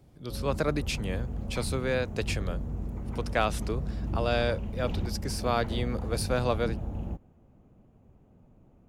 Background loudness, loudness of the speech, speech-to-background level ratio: -35.5 LUFS, -32.0 LUFS, 3.5 dB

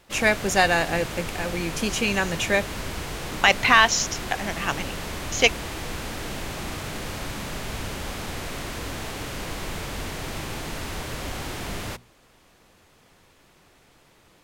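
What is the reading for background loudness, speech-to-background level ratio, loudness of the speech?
-32.5 LUFS, 10.5 dB, -22.0 LUFS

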